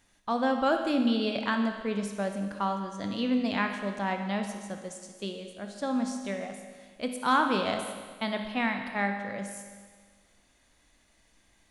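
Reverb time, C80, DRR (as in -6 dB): 1.6 s, 7.0 dB, 4.5 dB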